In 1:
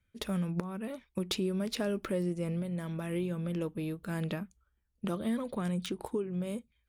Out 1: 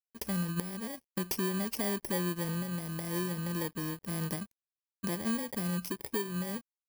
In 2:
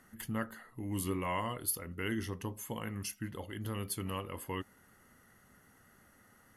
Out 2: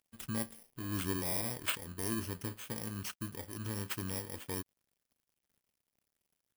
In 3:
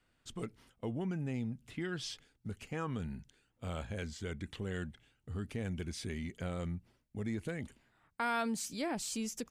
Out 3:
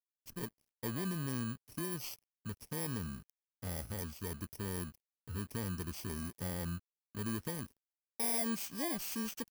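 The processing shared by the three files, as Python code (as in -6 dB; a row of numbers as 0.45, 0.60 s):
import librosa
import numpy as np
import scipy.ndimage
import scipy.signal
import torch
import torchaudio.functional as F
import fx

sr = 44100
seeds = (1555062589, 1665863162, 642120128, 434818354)

y = fx.bit_reversed(x, sr, seeds[0], block=32)
y = np.sign(y) * np.maximum(np.abs(y) - 10.0 ** (-57.0 / 20.0), 0.0)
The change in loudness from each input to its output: +0.5, +0.5, +0.5 LU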